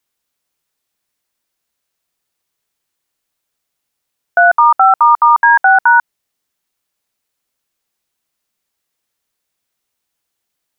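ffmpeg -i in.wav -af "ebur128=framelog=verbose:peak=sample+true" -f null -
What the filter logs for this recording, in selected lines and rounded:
Integrated loudness:
  I:          -9.3 LUFS
  Threshold: -19.3 LUFS
Loudness range:
  LRA:         8.6 LU
  Threshold: -32.9 LUFS
  LRA low:   -19.6 LUFS
  LRA high:  -11.1 LUFS
Sample peak:
  Peak:       -1.3 dBFS
True peak:
  Peak:       -1.3 dBFS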